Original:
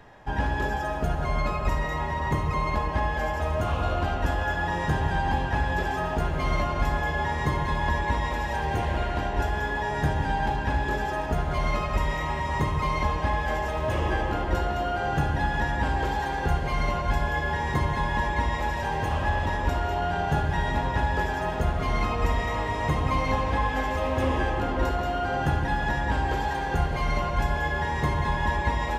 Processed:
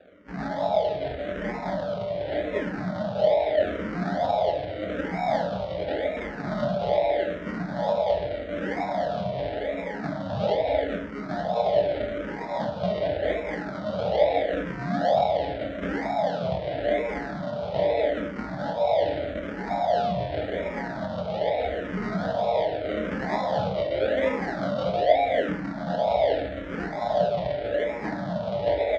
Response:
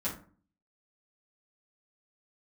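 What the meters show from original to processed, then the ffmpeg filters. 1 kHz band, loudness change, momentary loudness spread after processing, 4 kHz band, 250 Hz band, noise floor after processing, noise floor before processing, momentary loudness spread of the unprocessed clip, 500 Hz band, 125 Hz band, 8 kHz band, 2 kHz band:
−2.5 dB, 0.0 dB, 8 LU, −1.0 dB, +1.0 dB, −34 dBFS, −29 dBFS, 2 LU, +7.5 dB, −8.5 dB, below −10 dB, −6.5 dB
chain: -filter_complex "[0:a]equalizer=frequency=650:width_type=o:width=0.23:gain=9.5,aecho=1:1:3.9:0.83,acrusher=samples=41:mix=1:aa=0.000001:lfo=1:lforange=24.6:lforate=1.1,highpass=190,equalizer=frequency=240:width_type=q:width=4:gain=-9,equalizer=frequency=350:width_type=q:width=4:gain=-8,equalizer=frequency=630:width_type=q:width=4:gain=10,equalizer=frequency=1100:width_type=q:width=4:gain=-9,equalizer=frequency=2600:width_type=q:width=4:gain=-8,lowpass=frequency=3700:width=0.5412,lowpass=frequency=3700:width=1.3066,asplit=2[link_01][link_02];[1:a]atrim=start_sample=2205,adelay=17[link_03];[link_02][link_03]afir=irnorm=-1:irlink=0,volume=-8.5dB[link_04];[link_01][link_04]amix=inputs=2:normalize=0,asplit=2[link_05][link_06];[link_06]afreqshift=-0.83[link_07];[link_05][link_07]amix=inputs=2:normalize=1"

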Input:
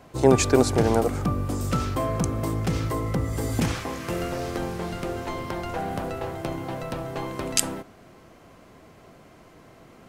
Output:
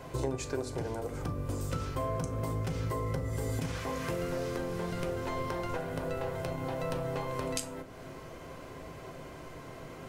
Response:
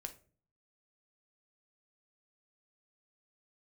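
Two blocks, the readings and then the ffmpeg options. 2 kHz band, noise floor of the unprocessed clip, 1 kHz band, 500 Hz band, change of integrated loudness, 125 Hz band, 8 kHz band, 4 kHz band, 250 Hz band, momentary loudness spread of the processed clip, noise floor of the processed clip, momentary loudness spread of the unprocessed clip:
−7.5 dB, −52 dBFS, −8.0 dB, −9.0 dB, −9.5 dB, −7.5 dB, −13.0 dB, −10.5 dB, −11.0 dB, 12 LU, −47 dBFS, 12 LU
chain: -filter_complex "[0:a]acompressor=threshold=-37dB:ratio=8[link_01];[1:a]atrim=start_sample=2205[link_02];[link_01][link_02]afir=irnorm=-1:irlink=0,volume=8dB"

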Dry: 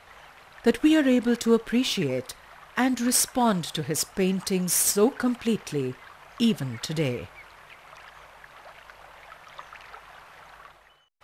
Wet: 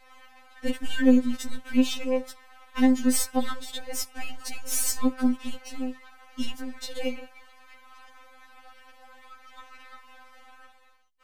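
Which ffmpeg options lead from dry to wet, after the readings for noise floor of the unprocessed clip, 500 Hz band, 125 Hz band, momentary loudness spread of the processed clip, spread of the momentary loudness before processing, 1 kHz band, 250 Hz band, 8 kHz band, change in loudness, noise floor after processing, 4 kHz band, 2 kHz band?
−52 dBFS, −6.5 dB, below −15 dB, 16 LU, 19 LU, −6.0 dB, −1.0 dB, −5.0 dB, −3.0 dB, −54 dBFS, −4.5 dB, −4.5 dB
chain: -af "aeval=exprs='if(lt(val(0),0),0.447*val(0),val(0))':channel_layout=same,afftfilt=real='re*3.46*eq(mod(b,12),0)':imag='im*3.46*eq(mod(b,12),0)':win_size=2048:overlap=0.75"

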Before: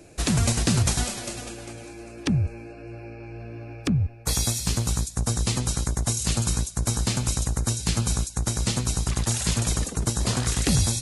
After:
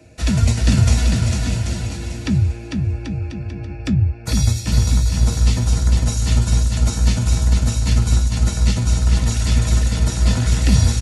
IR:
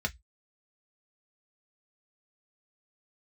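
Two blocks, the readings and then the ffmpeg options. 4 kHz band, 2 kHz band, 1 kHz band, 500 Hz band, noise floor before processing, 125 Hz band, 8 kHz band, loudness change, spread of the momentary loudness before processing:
+2.0 dB, +4.0 dB, +2.0 dB, +2.5 dB, −43 dBFS, +9.0 dB, −1.0 dB, +6.5 dB, 17 LU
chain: -filter_complex "[0:a]aecho=1:1:450|787.5|1041|1230|1373:0.631|0.398|0.251|0.158|0.1[link_01];[1:a]atrim=start_sample=2205,atrim=end_sample=3528[link_02];[link_01][link_02]afir=irnorm=-1:irlink=0,volume=-4dB"

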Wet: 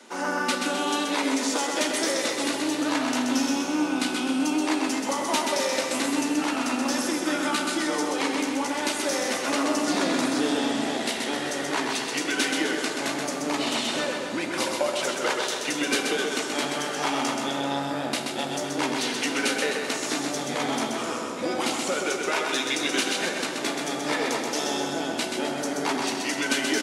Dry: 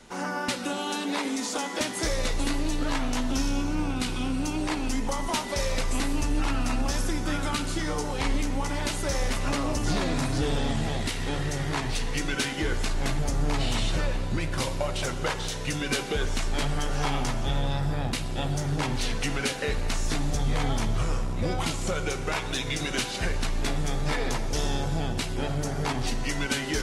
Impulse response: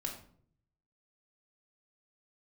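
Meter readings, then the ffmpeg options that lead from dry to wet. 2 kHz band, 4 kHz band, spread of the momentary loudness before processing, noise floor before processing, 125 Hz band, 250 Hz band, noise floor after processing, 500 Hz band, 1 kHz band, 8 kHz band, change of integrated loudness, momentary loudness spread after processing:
+5.0 dB, +4.5 dB, 2 LU, −32 dBFS, −15.0 dB, +4.0 dB, −31 dBFS, +4.5 dB, +4.5 dB, +4.5 dB, +3.0 dB, 4 LU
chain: -filter_complex "[0:a]highpass=frequency=240:width=0.5412,highpass=frequency=240:width=1.3066,aecho=1:1:129|258|387|516|645|774|903:0.596|0.316|0.167|0.0887|0.047|0.0249|0.0132,asplit=2[link_01][link_02];[1:a]atrim=start_sample=2205[link_03];[link_02][link_03]afir=irnorm=-1:irlink=0,volume=-6dB[link_04];[link_01][link_04]amix=inputs=2:normalize=0"

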